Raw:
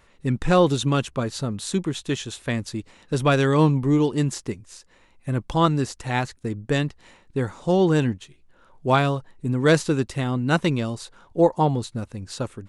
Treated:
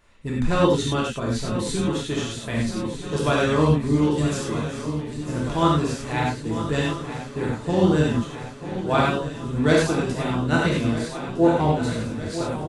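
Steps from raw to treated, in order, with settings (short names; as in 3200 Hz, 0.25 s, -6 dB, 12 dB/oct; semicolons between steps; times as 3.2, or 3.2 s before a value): swung echo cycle 1.258 s, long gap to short 3:1, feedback 67%, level -12 dB; non-linear reverb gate 0.13 s flat, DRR -4 dB; harmoniser -12 st -14 dB; gain -5.5 dB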